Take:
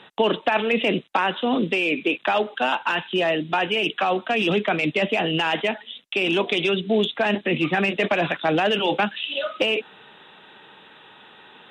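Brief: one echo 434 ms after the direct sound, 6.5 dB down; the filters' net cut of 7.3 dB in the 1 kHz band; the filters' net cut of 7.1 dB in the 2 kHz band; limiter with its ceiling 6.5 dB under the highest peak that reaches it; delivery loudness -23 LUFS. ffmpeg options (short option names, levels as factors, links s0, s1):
-af "equalizer=f=1000:t=o:g=-9,equalizer=f=2000:t=o:g=-8,alimiter=limit=0.119:level=0:latency=1,aecho=1:1:434:0.473,volume=1.58"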